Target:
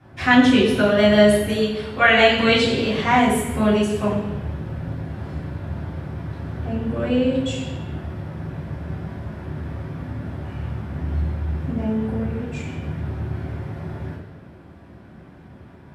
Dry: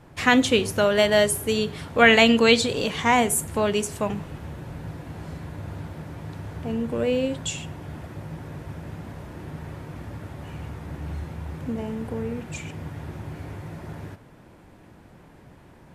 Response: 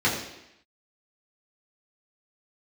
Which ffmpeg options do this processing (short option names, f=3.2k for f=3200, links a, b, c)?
-filter_complex "[0:a]asettb=1/sr,asplit=3[a][b][c];[a]atrim=end=1.504[d];[b]atrim=start=1.5:end=2.37,asetpts=PTS-STARTPTS,afade=t=in:d=0.004:c=qsin,afade=t=out:st=0.866:d=0.004:c=qsin,equalizer=f=170:w=0.56:g=-7.5[e];[c]atrim=start=2.366[f];[d][e]acrossfade=d=0.004:c1=hsin:c2=qsin[g];[g][f]acrossfade=d=0.004:c1=qsin:c2=hsin[h];[1:a]atrim=start_sample=2205,asetrate=33516,aresample=44100[i];[h][i]afir=irnorm=-1:irlink=0,volume=-14dB"